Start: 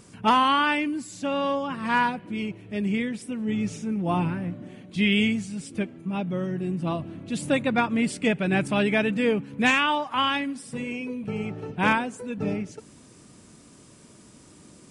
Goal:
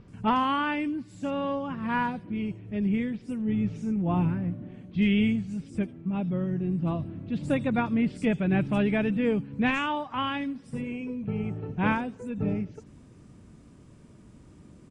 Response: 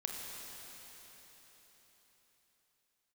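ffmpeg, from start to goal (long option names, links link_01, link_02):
-filter_complex "[0:a]aemphasis=mode=reproduction:type=bsi,acrossover=split=4700[link_01][link_02];[link_02]adelay=80[link_03];[link_01][link_03]amix=inputs=2:normalize=0,volume=-5.5dB"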